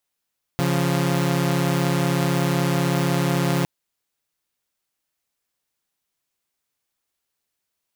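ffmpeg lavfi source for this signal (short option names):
-f lavfi -i "aevalsrc='0.112*((2*mod(138.59*t,1)-1)+(2*mod(174.61*t,1)-1))':d=3.06:s=44100"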